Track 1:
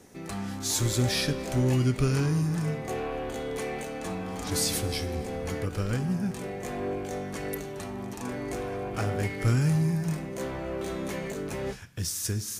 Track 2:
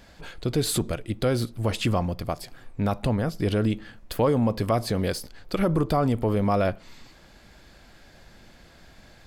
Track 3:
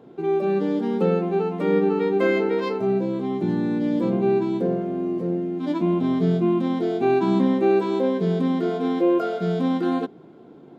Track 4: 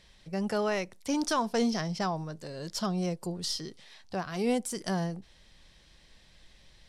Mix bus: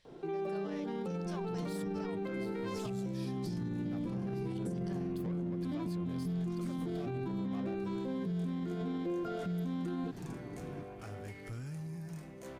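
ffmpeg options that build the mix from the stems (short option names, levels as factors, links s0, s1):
-filter_complex "[0:a]adelay=2050,volume=0.211[s0];[1:a]adelay=1050,volume=0.473,asplit=3[s1][s2][s3];[s1]atrim=end=2.9,asetpts=PTS-STARTPTS,afade=t=out:st=2.896:d=0.004:c=hsin[s4];[s2]atrim=start=2.9:end=3.42,asetpts=PTS-STARTPTS,volume=0[s5];[s3]atrim=start=3.42,asetpts=PTS-STARTPTS,afade=t=in:d=0.004:c=hsin[s6];[s4][s5][s6]concat=n=3:v=0:a=1[s7];[2:a]asubboost=boost=10:cutoff=160,acrossover=split=320|790[s8][s9][s10];[s8]acompressor=threshold=0.178:ratio=4[s11];[s9]acompressor=threshold=0.0447:ratio=4[s12];[s10]acompressor=threshold=0.0178:ratio=4[s13];[s11][s12][s13]amix=inputs=3:normalize=0,adelay=50,volume=0.75[s14];[3:a]volume=0.282[s15];[s14][s15]amix=inputs=2:normalize=0,equalizer=f=230:w=2.8:g=-8,acompressor=threshold=0.0631:ratio=6,volume=1[s16];[s0][s7]amix=inputs=2:normalize=0,asoftclip=type=tanh:threshold=0.0299,alimiter=level_in=4.47:limit=0.0631:level=0:latency=1:release=87,volume=0.224,volume=1[s17];[s16][s17]amix=inputs=2:normalize=0,alimiter=level_in=2:limit=0.0631:level=0:latency=1:release=82,volume=0.501"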